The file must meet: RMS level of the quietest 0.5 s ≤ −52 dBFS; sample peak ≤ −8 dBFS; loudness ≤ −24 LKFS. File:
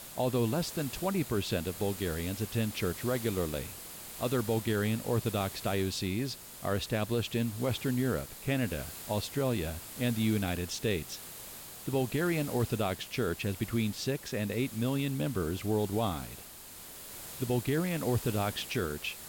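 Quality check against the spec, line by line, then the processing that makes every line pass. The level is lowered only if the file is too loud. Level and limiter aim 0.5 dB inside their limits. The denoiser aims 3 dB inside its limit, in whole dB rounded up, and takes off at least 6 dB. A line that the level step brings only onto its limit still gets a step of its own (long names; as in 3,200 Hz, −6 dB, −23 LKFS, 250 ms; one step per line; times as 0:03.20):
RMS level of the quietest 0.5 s −48 dBFS: out of spec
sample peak −19.5 dBFS: in spec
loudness −32.5 LKFS: in spec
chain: broadband denoise 7 dB, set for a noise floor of −48 dBFS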